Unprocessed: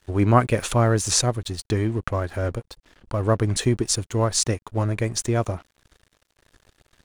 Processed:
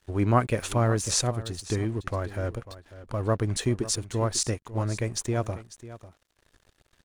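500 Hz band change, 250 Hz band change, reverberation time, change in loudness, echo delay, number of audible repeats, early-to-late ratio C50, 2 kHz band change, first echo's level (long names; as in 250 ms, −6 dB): −5.0 dB, −5.0 dB, no reverb audible, −5.0 dB, 546 ms, 1, no reverb audible, −5.0 dB, −15.5 dB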